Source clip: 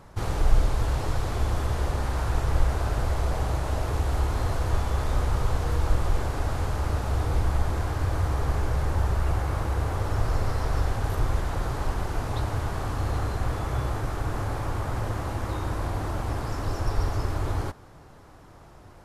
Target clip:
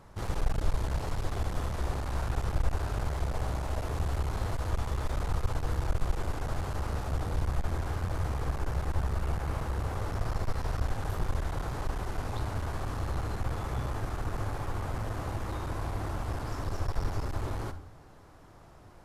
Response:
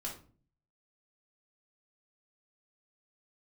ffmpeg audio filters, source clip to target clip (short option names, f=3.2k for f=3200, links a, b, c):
-filter_complex "[0:a]asplit=2[a][b];[1:a]atrim=start_sample=2205,adelay=47[c];[b][c]afir=irnorm=-1:irlink=0,volume=-12dB[d];[a][d]amix=inputs=2:normalize=0,aeval=exprs='clip(val(0),-1,0.0447)':c=same,volume=-4.5dB"